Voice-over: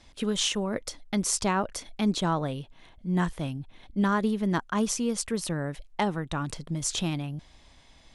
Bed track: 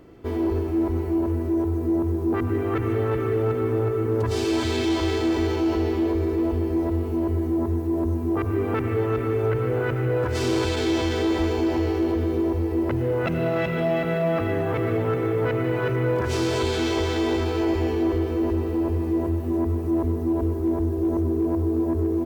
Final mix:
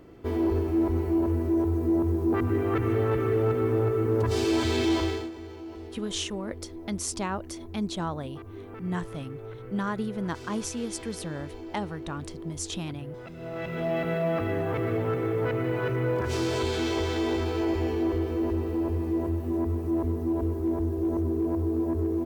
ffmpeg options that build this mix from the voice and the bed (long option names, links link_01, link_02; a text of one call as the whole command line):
ffmpeg -i stem1.wav -i stem2.wav -filter_complex "[0:a]adelay=5750,volume=-5dB[link_01];[1:a]volume=12.5dB,afade=type=out:start_time=4.96:duration=0.35:silence=0.149624,afade=type=in:start_time=13.37:duration=0.64:silence=0.199526[link_02];[link_01][link_02]amix=inputs=2:normalize=0" out.wav